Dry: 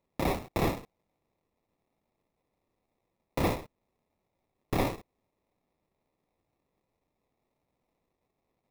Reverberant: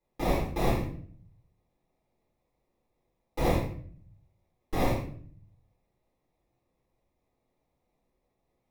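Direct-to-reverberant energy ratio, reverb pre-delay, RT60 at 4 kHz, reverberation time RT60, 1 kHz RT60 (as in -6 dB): -10.0 dB, 3 ms, 0.40 s, 0.50 s, 0.45 s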